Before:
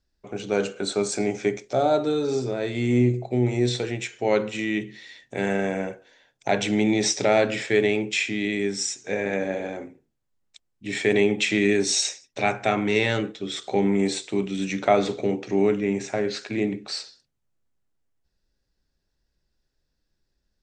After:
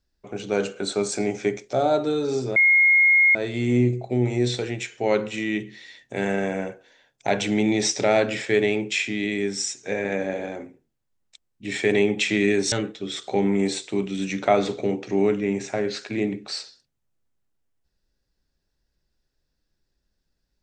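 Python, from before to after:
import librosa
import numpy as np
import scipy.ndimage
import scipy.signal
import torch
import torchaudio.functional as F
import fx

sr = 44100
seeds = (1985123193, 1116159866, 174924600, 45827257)

y = fx.edit(x, sr, fx.insert_tone(at_s=2.56, length_s=0.79, hz=2150.0, db=-13.0),
    fx.cut(start_s=11.93, length_s=1.19), tone=tone)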